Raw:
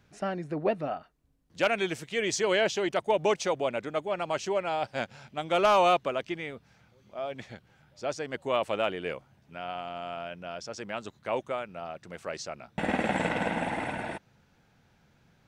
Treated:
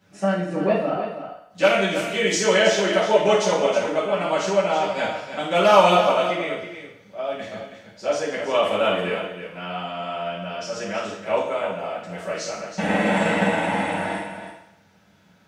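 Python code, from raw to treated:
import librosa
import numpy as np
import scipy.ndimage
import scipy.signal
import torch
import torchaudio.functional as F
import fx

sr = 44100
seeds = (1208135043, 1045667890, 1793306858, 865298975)

p1 = scipy.signal.sosfilt(scipy.signal.butter(2, 110.0, 'highpass', fs=sr, output='sos'), x)
p2 = p1 + fx.echo_single(p1, sr, ms=323, db=-9.5, dry=0)
p3 = fx.rev_fdn(p2, sr, rt60_s=0.74, lf_ratio=0.7, hf_ratio=0.95, size_ms=31.0, drr_db=-9.0)
y = p3 * 10.0 ** (-1.5 / 20.0)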